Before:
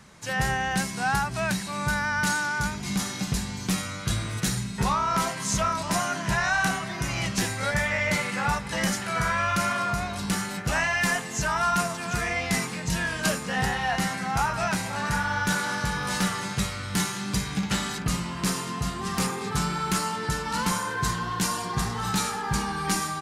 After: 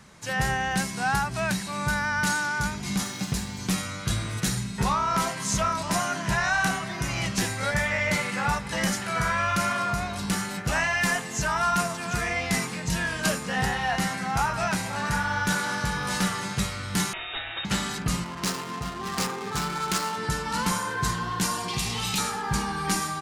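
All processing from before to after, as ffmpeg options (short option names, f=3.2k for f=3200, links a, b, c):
-filter_complex "[0:a]asettb=1/sr,asplit=3[a][b][c];[a]atrim=end=3.044[d];[b]atrim=start=3.04:end=3.59,asetpts=PTS-STARTPTS,afade=t=in:d=0.004:c=qsin,afade=t=out:st=0.546:d=0.004:c=qsin,highpass=51,aeval=exprs='sgn(val(0))*max(abs(val(0))-0.00398,0)':c=same[e];[c]atrim=start=3.586[f];[d][e]acrossfade=d=0.004:c1=hsin:c2=qsin[g];[g][f]acrossfade=d=0.004:c1=qsin:c2=hsin,asettb=1/sr,asplit=3[h][i][j];[h]atrim=end=17.134[k];[i]atrim=start=17.13:end=17.65,asetpts=PTS-STARTPTS,afade=t=in:d=0.004:c=qsin,afade=t=out:st=0.516:d=0.004:c=qsin,aemphasis=mode=production:type=riaa,lowpass=f=3.3k:t=q:w=0.5098,lowpass=f=3.3k:t=q:w=0.6013,lowpass=f=3.3k:t=q:w=0.9,lowpass=f=3.3k:t=q:w=2.563,afreqshift=-3900[l];[j]atrim=start=17.646[m];[k][l]acrossfade=d=0.004:c1=hsin:c2=qsin[n];[n][m]acrossfade=d=0.004:c1=qsin:c2=hsin,asettb=1/sr,asplit=3[o][p][q];[o]atrim=end=18.244[r];[p]atrim=start=18.24:end=20.18,asetpts=PTS-STARTPTS,afade=t=in:d=0.004:c=qsin,afade=t=out:st=1.936:d=0.004:c=qsin,adynamicsmooth=sensitivity=7.5:basefreq=730,bass=f=250:g=-6,treble=f=4k:g=7[s];[q]atrim=start=20.176[t];[r][s]acrossfade=d=0.004:c1=hsin:c2=qsin[u];[u][t]acrossfade=d=0.004:c1=qsin:c2=hsin,asettb=1/sr,asplit=3[v][w][x];[v]atrim=end=21.684[y];[w]atrim=start=21.68:end=22.18,asetpts=PTS-STARTPTS,afade=t=in:d=0.004:c=qsin,afade=t=out:st=0.496:d=0.004:c=qsin,highshelf=f=2k:t=q:w=3:g=7.5,acompressor=threshold=-25dB:ratio=2.5:attack=3.2:release=140:knee=1:detection=peak,volume=18dB,asoftclip=hard,volume=-18dB[z];[x]atrim=start=22.176[aa];[y][z]acrossfade=d=0.004:c1=hsin:c2=qsin[ab];[ab][aa]acrossfade=d=0.004:c1=qsin:c2=hsin"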